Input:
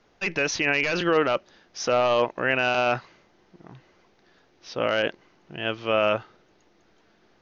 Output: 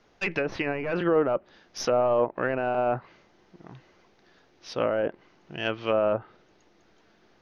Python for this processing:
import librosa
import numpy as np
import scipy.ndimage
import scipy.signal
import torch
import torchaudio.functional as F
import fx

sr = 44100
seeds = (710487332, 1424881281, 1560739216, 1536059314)

y = fx.tracing_dist(x, sr, depth_ms=0.024)
y = fx.env_lowpass_down(y, sr, base_hz=930.0, full_db=-20.0)